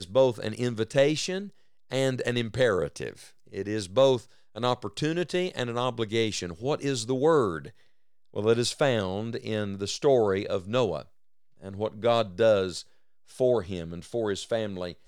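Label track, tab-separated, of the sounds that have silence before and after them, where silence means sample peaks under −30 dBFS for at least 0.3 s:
1.920000	3.110000	sound
3.550000	4.180000	sound
4.560000	7.670000	sound
8.360000	11.020000	sound
11.660000	12.800000	sound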